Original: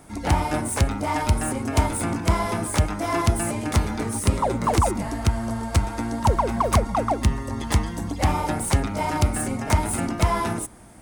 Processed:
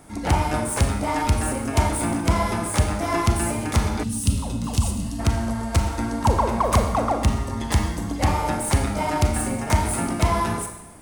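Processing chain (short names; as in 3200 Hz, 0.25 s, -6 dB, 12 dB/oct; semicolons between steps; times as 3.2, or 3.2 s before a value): Schroeder reverb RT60 0.93 s, combs from 28 ms, DRR 5 dB; spectral gain 4.03–5.19, 280–2500 Hz -15 dB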